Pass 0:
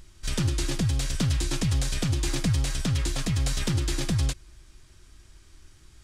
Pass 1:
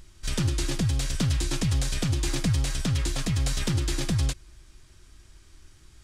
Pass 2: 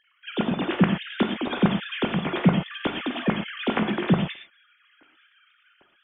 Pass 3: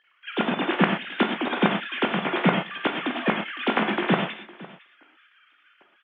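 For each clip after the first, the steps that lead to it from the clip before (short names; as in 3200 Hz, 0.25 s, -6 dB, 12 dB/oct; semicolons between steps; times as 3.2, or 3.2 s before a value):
nothing audible
sine-wave speech; non-linear reverb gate 0.15 s flat, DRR 3.5 dB; AGC gain up to 3.5 dB; gain -4 dB
spectral whitening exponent 0.6; BPF 270–2700 Hz; echo 0.507 s -20 dB; gain +3.5 dB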